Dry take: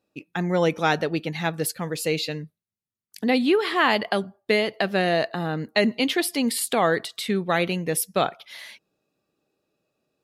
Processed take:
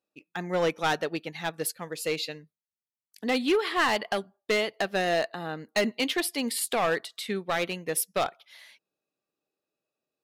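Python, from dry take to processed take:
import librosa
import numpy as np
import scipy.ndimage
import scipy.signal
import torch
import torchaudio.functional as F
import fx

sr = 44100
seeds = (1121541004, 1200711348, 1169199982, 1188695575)

y = fx.low_shelf(x, sr, hz=220.0, db=-11.0)
y = np.clip(y, -10.0 ** (-18.5 / 20.0), 10.0 ** (-18.5 / 20.0))
y = fx.upward_expand(y, sr, threshold_db=-41.0, expansion=1.5)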